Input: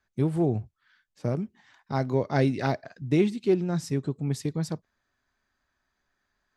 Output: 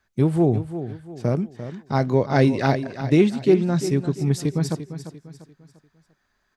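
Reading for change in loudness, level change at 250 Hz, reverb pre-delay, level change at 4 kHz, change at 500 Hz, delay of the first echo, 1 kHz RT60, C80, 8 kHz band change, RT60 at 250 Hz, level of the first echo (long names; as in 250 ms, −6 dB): +6.0 dB, +6.5 dB, no reverb audible, +6.5 dB, +6.5 dB, 346 ms, no reverb audible, no reverb audible, +6.5 dB, no reverb audible, −11.5 dB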